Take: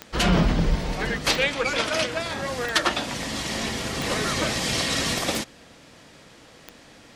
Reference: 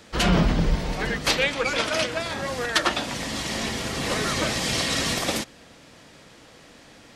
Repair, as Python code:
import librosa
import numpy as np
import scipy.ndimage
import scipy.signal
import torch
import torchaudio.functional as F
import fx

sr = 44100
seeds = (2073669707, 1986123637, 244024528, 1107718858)

y = fx.fix_declip(x, sr, threshold_db=-10.0)
y = fx.fix_declick_ar(y, sr, threshold=10.0)